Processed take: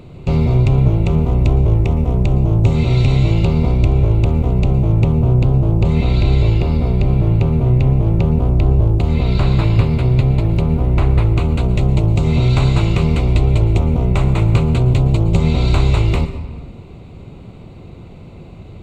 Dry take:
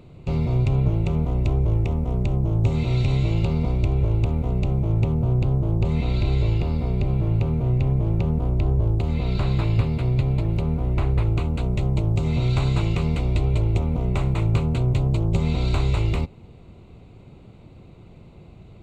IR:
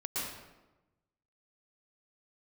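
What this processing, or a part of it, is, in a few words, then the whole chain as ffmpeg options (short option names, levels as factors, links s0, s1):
compressed reverb return: -filter_complex "[0:a]asplit=2[s0][s1];[1:a]atrim=start_sample=2205[s2];[s1][s2]afir=irnorm=-1:irlink=0,acompressor=threshold=0.0891:ratio=6,volume=0.422[s3];[s0][s3]amix=inputs=2:normalize=0,volume=2.11"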